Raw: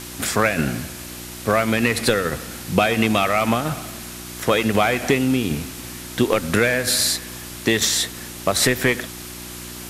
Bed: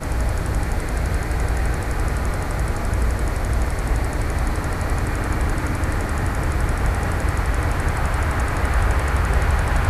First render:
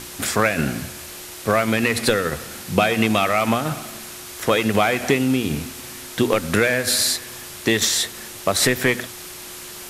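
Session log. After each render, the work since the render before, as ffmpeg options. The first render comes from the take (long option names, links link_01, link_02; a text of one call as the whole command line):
ffmpeg -i in.wav -af "bandreject=frequency=60:width_type=h:width=4,bandreject=frequency=120:width_type=h:width=4,bandreject=frequency=180:width_type=h:width=4,bandreject=frequency=240:width_type=h:width=4,bandreject=frequency=300:width_type=h:width=4" out.wav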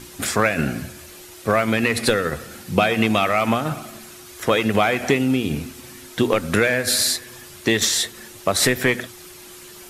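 ffmpeg -i in.wav -af "afftdn=noise_reduction=8:noise_floor=-37" out.wav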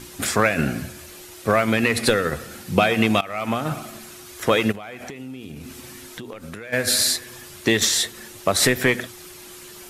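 ffmpeg -i in.wav -filter_complex "[0:a]asplit=3[link_01][link_02][link_03];[link_01]afade=type=out:start_time=4.71:duration=0.02[link_04];[link_02]acompressor=threshold=-32dB:ratio=10:attack=3.2:release=140:knee=1:detection=peak,afade=type=in:start_time=4.71:duration=0.02,afade=type=out:start_time=6.72:duration=0.02[link_05];[link_03]afade=type=in:start_time=6.72:duration=0.02[link_06];[link_04][link_05][link_06]amix=inputs=3:normalize=0,asplit=2[link_07][link_08];[link_07]atrim=end=3.21,asetpts=PTS-STARTPTS,afade=type=out:start_time=3.206:duration=0.004:curve=hsin:silence=0.105925[link_09];[link_08]atrim=start=3.21,asetpts=PTS-STARTPTS,afade=type=in:duration=0.54:silence=0.105925[link_10];[link_09][link_10]concat=n=2:v=0:a=1" out.wav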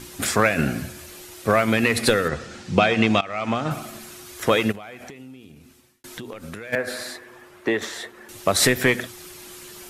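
ffmpeg -i in.wav -filter_complex "[0:a]asettb=1/sr,asplit=3[link_01][link_02][link_03];[link_01]atrim=end=2.284[link_04];[link_02]atrim=start=2.28:end=3.71,asetpts=PTS-STARTPTS,afade=type=in:duration=0.004:curve=qsin,afade=type=out:start_time=1.426:duration=0.004:curve=qsin,lowpass=frequency=7100:width=0.5412,lowpass=frequency=7100:width=1.3066[link_05];[link_03]atrim=start=3.706[link_06];[link_04][link_05]acrossfade=duration=0.004:curve1=hsin:curve2=qsin[link_07];[link_07][link_06]acrossfade=duration=0.004:curve1=qsin:curve2=hsin,asettb=1/sr,asplit=3[link_08][link_09][link_10];[link_08]atrim=end=6.754[link_11];[link_09]atrim=start=6.75:end=8.29,asetpts=PTS-STARTPTS,afade=type=in:duration=0.004:curve=qsin,afade=type=out:start_time=1.536:duration=0.004:curve=qsin,acrossover=split=280 2100:gain=0.224 1 0.126[link_12][link_13][link_14];[link_12][link_13][link_14]amix=inputs=3:normalize=0[link_15];[link_10]atrim=start=8.286[link_16];[link_11][link_15]acrossfade=duration=0.004:curve1=hsin:curve2=qsin[link_17];[link_17][link_16]acrossfade=duration=0.004:curve1=qsin:curve2=hsin,asplit=2[link_18][link_19];[link_18]atrim=end=6.04,asetpts=PTS-STARTPTS,afade=type=out:start_time=4.46:duration=1.58[link_20];[link_19]atrim=start=6.04,asetpts=PTS-STARTPTS,afade=type=in:duration=0.004:curve=hsin[link_21];[link_20][link_21]concat=n=2:v=0:a=1" out.wav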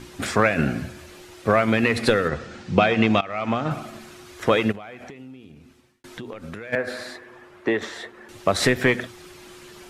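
ffmpeg -i in.wav -af "aemphasis=mode=reproduction:type=50fm" out.wav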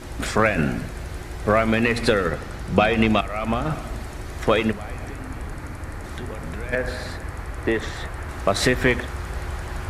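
ffmpeg -i in.wav -i bed.wav -filter_complex "[1:a]volume=-11.5dB[link_01];[0:a][link_01]amix=inputs=2:normalize=0" out.wav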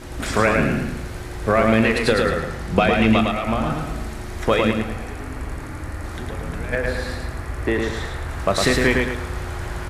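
ffmpeg -i in.wav -filter_complex "[0:a]asplit=2[link_01][link_02];[link_02]adelay=36,volume=-13dB[link_03];[link_01][link_03]amix=inputs=2:normalize=0,aecho=1:1:108|216|324|432|540:0.668|0.254|0.0965|0.0367|0.0139" out.wav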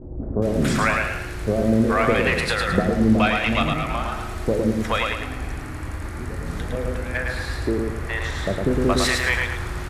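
ffmpeg -i in.wav -filter_complex "[0:a]acrossover=split=610[link_01][link_02];[link_02]adelay=420[link_03];[link_01][link_03]amix=inputs=2:normalize=0" out.wav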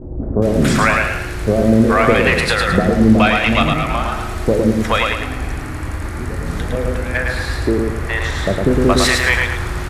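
ffmpeg -i in.wav -af "volume=6.5dB,alimiter=limit=-1dB:level=0:latency=1" out.wav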